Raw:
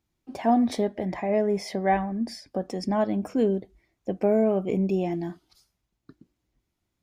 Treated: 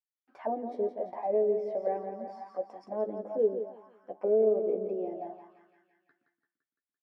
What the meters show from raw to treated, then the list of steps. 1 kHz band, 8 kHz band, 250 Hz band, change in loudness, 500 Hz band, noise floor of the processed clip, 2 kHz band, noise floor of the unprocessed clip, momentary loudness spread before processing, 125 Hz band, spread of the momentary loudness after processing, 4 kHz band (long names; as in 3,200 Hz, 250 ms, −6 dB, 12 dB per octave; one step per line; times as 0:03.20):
−9.0 dB, can't be measured, −15.5 dB, −5.5 dB, −2.0 dB, below −85 dBFS, below −15 dB, −80 dBFS, 10 LU, below −15 dB, 15 LU, below −25 dB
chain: noise gate with hold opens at −45 dBFS
low-shelf EQ 86 Hz −8.5 dB
double-tracking delay 14 ms −6 dB
repeating echo 170 ms, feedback 58%, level −8 dB
envelope filter 460–1,800 Hz, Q 4.5, down, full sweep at −21 dBFS